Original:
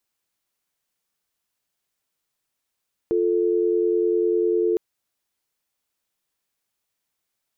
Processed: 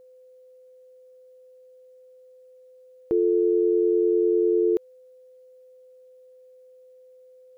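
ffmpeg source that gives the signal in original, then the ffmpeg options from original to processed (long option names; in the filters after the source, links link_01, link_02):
-f lavfi -i "aevalsrc='0.0944*(sin(2*PI*350*t)+sin(2*PI*440*t))':duration=1.66:sample_rate=44100"
-af "aeval=exprs='val(0)+0.00355*sin(2*PI*510*n/s)':channel_layout=same"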